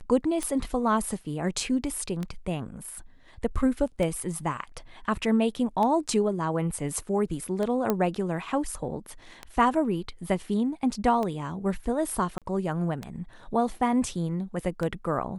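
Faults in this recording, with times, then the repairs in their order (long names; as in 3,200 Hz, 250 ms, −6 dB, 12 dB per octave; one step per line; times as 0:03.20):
scratch tick 33 1/3 rpm −18 dBFS
0:07.90: click −11 dBFS
0:12.38–0:12.42: drop-out 37 ms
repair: click removal
repair the gap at 0:12.38, 37 ms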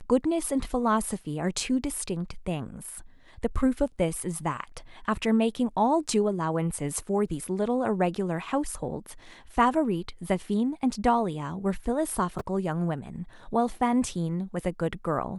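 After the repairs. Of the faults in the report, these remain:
0:07.90: click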